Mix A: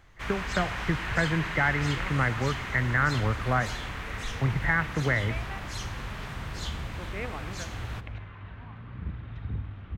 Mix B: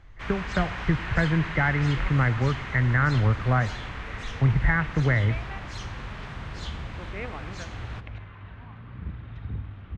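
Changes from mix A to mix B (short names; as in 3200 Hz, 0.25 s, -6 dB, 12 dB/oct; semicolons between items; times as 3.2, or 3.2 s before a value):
speech: add low shelf 150 Hz +11 dB; first sound: add air absorption 83 m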